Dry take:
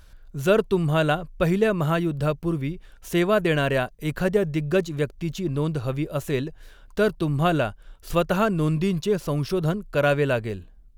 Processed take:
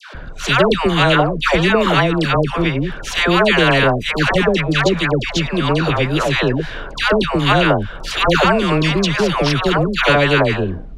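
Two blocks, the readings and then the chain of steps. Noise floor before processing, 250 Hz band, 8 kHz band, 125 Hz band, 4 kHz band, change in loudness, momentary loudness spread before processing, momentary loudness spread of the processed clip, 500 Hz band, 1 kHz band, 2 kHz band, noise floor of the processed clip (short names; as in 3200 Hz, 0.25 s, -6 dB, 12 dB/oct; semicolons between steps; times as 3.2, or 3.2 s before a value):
-50 dBFS, +7.0 dB, +10.0 dB, +6.5 dB, +17.0 dB, +8.5 dB, 8 LU, 6 LU, +6.5 dB, +12.0 dB, +13.5 dB, -30 dBFS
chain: LPF 2900 Hz 12 dB/oct; dispersion lows, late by 0.15 s, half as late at 910 Hz; spectral compressor 2:1; gain +5.5 dB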